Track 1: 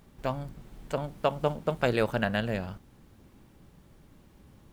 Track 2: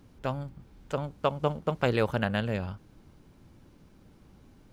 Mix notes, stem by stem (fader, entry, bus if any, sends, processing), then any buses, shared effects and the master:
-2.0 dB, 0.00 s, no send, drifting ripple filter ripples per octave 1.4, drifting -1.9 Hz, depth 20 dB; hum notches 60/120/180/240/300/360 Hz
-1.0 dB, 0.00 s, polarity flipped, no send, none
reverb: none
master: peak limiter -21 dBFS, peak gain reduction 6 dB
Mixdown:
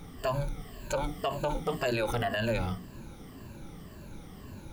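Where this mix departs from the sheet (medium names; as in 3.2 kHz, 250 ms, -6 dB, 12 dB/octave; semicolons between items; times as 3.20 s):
stem 1 -2.0 dB -> +5.5 dB; stem 2 -1.0 dB -> +5.5 dB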